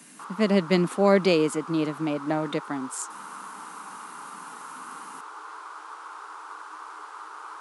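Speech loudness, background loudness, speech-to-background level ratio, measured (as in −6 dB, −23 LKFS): −24.5 LKFS, −40.5 LKFS, 16.0 dB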